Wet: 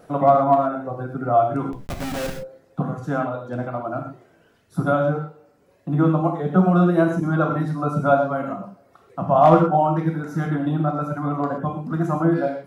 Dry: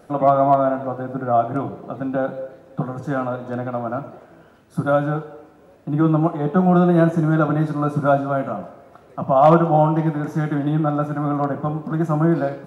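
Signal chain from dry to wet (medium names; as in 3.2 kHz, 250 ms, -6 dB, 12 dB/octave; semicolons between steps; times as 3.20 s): reverb removal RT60 1.4 s; 1.71–2.35 s: Schmitt trigger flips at -32 dBFS; gated-style reverb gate 150 ms flat, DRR 2.5 dB; trim -1 dB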